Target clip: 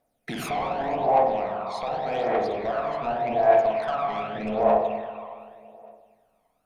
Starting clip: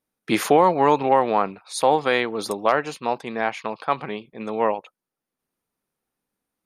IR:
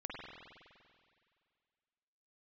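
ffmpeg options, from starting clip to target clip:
-filter_complex "[0:a]acompressor=threshold=-31dB:ratio=8,asettb=1/sr,asplit=3[link_01][link_02][link_03];[link_01]atrim=end=1.484[link_04];[link_02]atrim=start=1.48:end=3.59,asetpts=PTS-STARTPTS,afade=type=in:duration=0.004:curve=qsin,afade=type=out:start_time=2.106:duration=0.004:curve=qsin,lowpass=2800[link_05];[link_03]atrim=start=3.586[link_06];[link_04][link_05]acrossfade=duration=0.004:curve1=hsin:curve2=qsin[link_07];[link_07][link_06]acrossfade=duration=0.004:curve1=qsin:curve2=hsin[link_08];[1:a]atrim=start_sample=2205[link_09];[link_08][link_09]afir=irnorm=-1:irlink=0,asoftclip=type=tanh:threshold=-32.5dB,equalizer=frequency=200:width_type=o:width=0.33:gain=-3,equalizer=frequency=315:width_type=o:width=0.33:gain=-5,equalizer=frequency=630:width_type=o:width=0.33:gain=7,aphaser=in_gain=1:out_gain=1:delay=1:decay=0.58:speed=0.85:type=triangular,equalizer=frequency=700:width_type=o:width=0.24:gain=14.5,volume=6.5dB"

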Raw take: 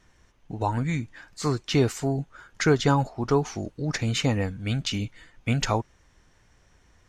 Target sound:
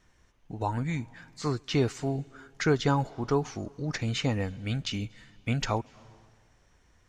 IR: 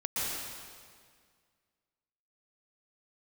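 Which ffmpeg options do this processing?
-filter_complex "[0:a]acrossover=split=7500[link_01][link_02];[link_02]acompressor=threshold=-58dB:ratio=4:attack=1:release=60[link_03];[link_01][link_03]amix=inputs=2:normalize=0,asplit=2[link_04][link_05];[1:a]atrim=start_sample=2205,asetrate=52920,aresample=44100,adelay=135[link_06];[link_05][link_06]afir=irnorm=-1:irlink=0,volume=-29.5dB[link_07];[link_04][link_07]amix=inputs=2:normalize=0,volume=-4dB"

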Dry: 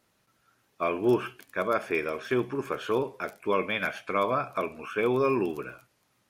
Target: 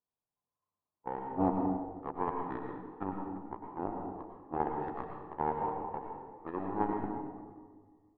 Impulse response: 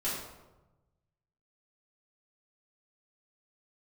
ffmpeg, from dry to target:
-filter_complex "[0:a]asetrate=33957,aresample=44100,aecho=1:1:343|686|1029|1372|1715:0.266|0.136|0.0692|0.0353|0.018,aeval=exprs='0.237*(cos(1*acos(clip(val(0)/0.237,-1,1)))-cos(1*PI/2))+0.075*(cos(3*acos(clip(val(0)/0.237,-1,1)))-cos(3*PI/2))+0.00299*(cos(4*acos(clip(val(0)/0.237,-1,1)))-cos(4*PI/2))':channel_layout=same,lowpass=frequency=880:width_type=q:width=2,asplit=2[link_01][link_02];[1:a]atrim=start_sample=2205,asetrate=31311,aresample=44100,adelay=96[link_03];[link_02][link_03]afir=irnorm=-1:irlink=0,volume=-10.5dB[link_04];[link_01][link_04]amix=inputs=2:normalize=0,volume=-4dB"

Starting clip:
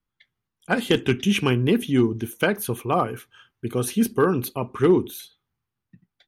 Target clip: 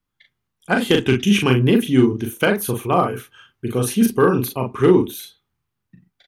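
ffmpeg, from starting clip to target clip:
ffmpeg -i in.wav -filter_complex "[0:a]asplit=2[link_01][link_02];[link_02]adelay=39,volume=-4.5dB[link_03];[link_01][link_03]amix=inputs=2:normalize=0,volume=3dB" out.wav

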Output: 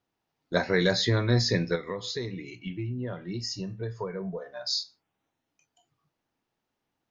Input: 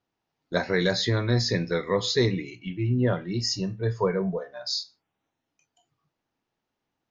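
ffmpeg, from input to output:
ffmpeg -i in.wav -filter_complex "[0:a]asettb=1/sr,asplit=3[link_01][link_02][link_03];[link_01]atrim=end=1.754[link_04];[link_02]atrim=start=1.75:end=4.46,asetpts=PTS-STARTPTS,afade=type=in:duration=0.004:curve=qsin,afade=type=out:start_time=2.706:duration=0.004:curve=qsin,acompressor=threshold=-31dB:ratio=6[link_05];[link_03]atrim=start=4.456[link_06];[link_04][link_05]acrossfade=duration=0.004:curve1=hsin:curve2=qsin[link_07];[link_07][link_06]acrossfade=duration=0.004:curve1=qsin:curve2=hsin" out.wav

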